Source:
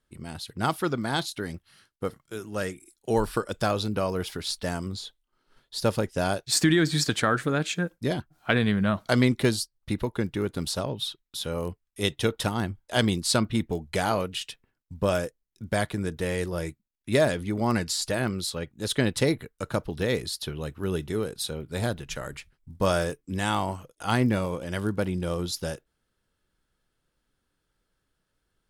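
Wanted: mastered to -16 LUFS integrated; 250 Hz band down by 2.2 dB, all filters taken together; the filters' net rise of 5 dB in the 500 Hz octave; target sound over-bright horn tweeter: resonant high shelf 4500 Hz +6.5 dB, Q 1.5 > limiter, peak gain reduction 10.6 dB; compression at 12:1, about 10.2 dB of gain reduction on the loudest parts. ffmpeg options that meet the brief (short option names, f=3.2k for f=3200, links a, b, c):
-af "equalizer=f=250:t=o:g=-5.5,equalizer=f=500:t=o:g=7.5,acompressor=threshold=-25dB:ratio=12,highshelf=f=4.5k:t=q:w=1.5:g=6.5,volume=16.5dB,alimiter=limit=-4dB:level=0:latency=1"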